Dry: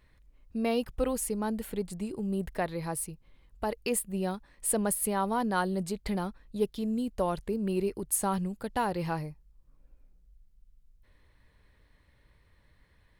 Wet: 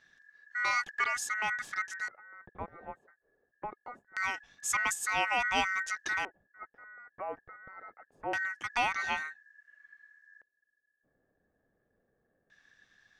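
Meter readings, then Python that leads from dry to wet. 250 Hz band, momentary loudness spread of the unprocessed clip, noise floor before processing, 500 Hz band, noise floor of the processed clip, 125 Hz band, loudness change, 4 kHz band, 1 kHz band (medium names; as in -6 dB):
-20.0 dB, 7 LU, -65 dBFS, -13.5 dB, -80 dBFS, -20.0 dB, -1.0 dB, +4.5 dB, -0.5 dB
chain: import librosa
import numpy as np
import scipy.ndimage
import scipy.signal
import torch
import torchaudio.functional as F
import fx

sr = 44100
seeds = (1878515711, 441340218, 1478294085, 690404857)

y = x * np.sin(2.0 * np.pi * 1700.0 * np.arange(len(x)) / sr)
y = fx.dynamic_eq(y, sr, hz=810.0, q=3.1, threshold_db=-54.0, ratio=4.0, max_db=7)
y = fx.filter_lfo_lowpass(y, sr, shape='square', hz=0.24, low_hz=520.0, high_hz=6500.0, q=2.0)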